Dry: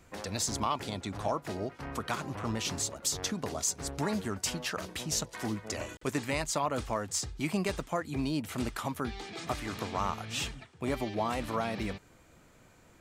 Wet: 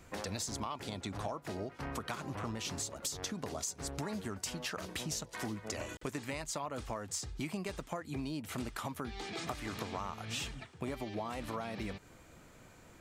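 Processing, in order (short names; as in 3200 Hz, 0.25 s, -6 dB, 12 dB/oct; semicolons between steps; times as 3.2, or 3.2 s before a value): compressor 6:1, threshold -38 dBFS, peak gain reduction 12 dB; gain +2 dB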